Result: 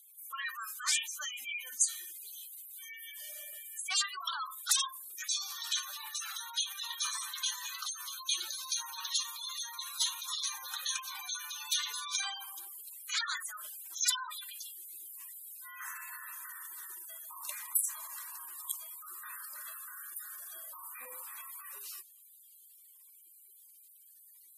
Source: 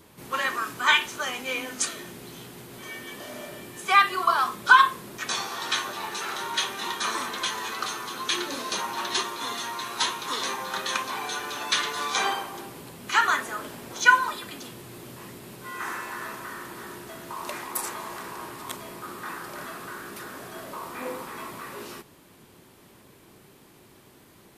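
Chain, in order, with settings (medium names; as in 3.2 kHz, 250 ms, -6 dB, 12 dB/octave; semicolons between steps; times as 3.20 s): wavefolder -18.5 dBFS; differentiator; spectral gate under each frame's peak -10 dB strong; trim +3 dB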